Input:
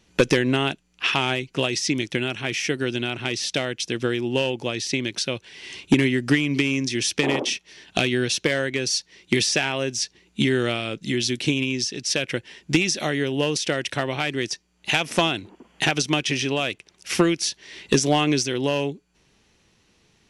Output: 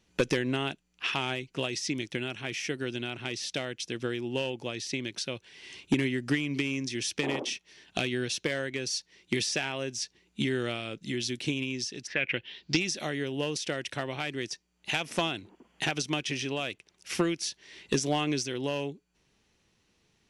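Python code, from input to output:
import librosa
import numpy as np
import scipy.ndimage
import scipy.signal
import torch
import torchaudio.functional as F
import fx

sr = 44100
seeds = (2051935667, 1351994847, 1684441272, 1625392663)

y = fx.lowpass_res(x, sr, hz=fx.line((12.06, 1700.0), (12.79, 5400.0)), q=4.9, at=(12.06, 12.79), fade=0.02)
y = y * 10.0 ** (-8.5 / 20.0)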